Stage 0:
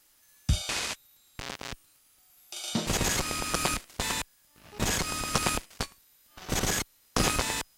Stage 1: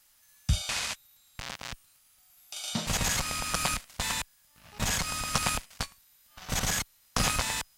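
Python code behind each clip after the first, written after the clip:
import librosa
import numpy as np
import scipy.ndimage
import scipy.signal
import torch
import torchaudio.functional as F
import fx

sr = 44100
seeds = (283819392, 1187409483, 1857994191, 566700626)

y = fx.peak_eq(x, sr, hz=360.0, db=-13.0, octaves=0.8)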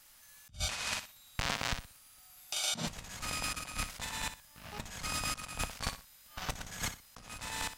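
y = fx.high_shelf(x, sr, hz=3000.0, db=-3.5)
y = fx.echo_feedback(y, sr, ms=61, feedback_pct=26, wet_db=-8.5)
y = fx.over_compress(y, sr, threshold_db=-37.0, ratio=-0.5)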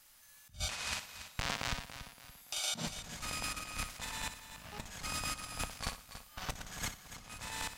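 y = fx.echo_feedback(x, sr, ms=284, feedback_pct=40, wet_db=-11.5)
y = y * 10.0 ** (-2.5 / 20.0)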